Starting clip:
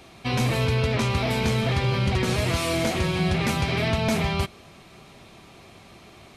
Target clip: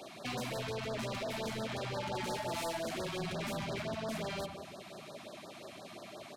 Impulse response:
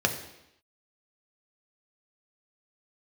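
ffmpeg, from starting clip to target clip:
-filter_complex "[0:a]equalizer=f=600:t=o:w=0.25:g=12.5,acrossover=split=310[a][b];[b]acompressor=threshold=-21dB:ratio=6[c];[a][c]amix=inputs=2:normalize=0,asettb=1/sr,asplit=3[d][e][f];[d]atrim=end=3.514[g];[e]atrim=start=3.51:end=3.97,asetpts=PTS-STARTPTS,afade=t=in:d=0.004:c=qsin,afade=t=out:st=0.456:d=0.004:c=qsin,lowshelf=f=330:g=6.5[h];[f]atrim=start=3.966[i];[g][h]acrossfade=d=0.004:c1=hsin:c2=qsin[j];[j][i]acrossfade=d=0.004:c1=qsin:c2=hsin,acompressor=threshold=-27dB:ratio=3,highpass=200,asplit=2[k][l];[l]adelay=95,lowpass=f=1.4k:p=1,volume=-9.5dB,asplit=2[m][n];[n]adelay=95,lowpass=f=1.4k:p=1,volume=0.54,asplit=2[o][p];[p]adelay=95,lowpass=f=1.4k:p=1,volume=0.54,asplit=2[q][r];[r]adelay=95,lowpass=f=1.4k:p=1,volume=0.54,asplit=2[s][t];[t]adelay=95,lowpass=f=1.4k:p=1,volume=0.54,asplit=2[u][v];[v]adelay=95,lowpass=f=1.4k:p=1,volume=0.54[w];[k][m][o][q][s][u][w]amix=inputs=7:normalize=0,asoftclip=type=tanh:threshold=-34.5dB,asettb=1/sr,asplit=3[x][y][z];[x]atrim=end=1.974[aa];[y]atrim=start=1.97:end=2.77,asetpts=PTS-STARTPTS,afade=t=in:d=0.004:c=qsin,afade=t=out:st=0.796:d=0.004:c=qsin,aeval=exprs='val(0)+0.0112*sin(2*PI*870*n/s)':c=same[ab];[z]atrim=start=2.766[ac];[aa][ab]acrossfade=d=0.004:c1=hsin:c2=qsin[ad];[ad][ac]acrossfade=d=0.004:c1=qsin:c2=hsin,afftfilt=real='re*(1-between(b*sr/1024,410*pow(2700/410,0.5+0.5*sin(2*PI*5.7*pts/sr))/1.41,410*pow(2700/410,0.5+0.5*sin(2*PI*5.7*pts/sr))*1.41))':imag='im*(1-between(b*sr/1024,410*pow(2700/410,0.5+0.5*sin(2*PI*5.7*pts/sr))/1.41,410*pow(2700/410,0.5+0.5*sin(2*PI*5.7*pts/sr))*1.41))':win_size=1024:overlap=0.75"

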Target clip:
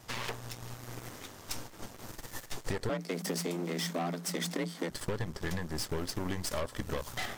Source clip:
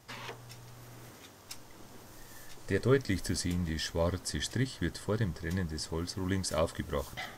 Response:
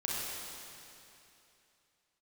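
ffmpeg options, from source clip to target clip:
-filter_complex "[0:a]acompressor=threshold=-37dB:ratio=10,aeval=exprs='0.0422*(cos(1*acos(clip(val(0)/0.0422,-1,1)))-cos(1*PI/2))+0.0075*(cos(8*acos(clip(val(0)/0.0422,-1,1)))-cos(8*PI/2))':c=same,asettb=1/sr,asplit=3[a][b][c];[a]atrim=end=2.894[d];[b]atrim=start=2.89:end=4.9,asetpts=PTS-STARTPTS,afade=t=in:d=0.004:c=qsin,afade=t=out:st=2.006:d=0.004:c=qsin,afreqshift=170[e];[c]atrim=start=4.896[f];[d][e]acrossfade=d=0.004:c1=hsin:c2=qsin[g];[g][f]acrossfade=d=0.004:c1=qsin:c2=hsin,volume=4.5dB"

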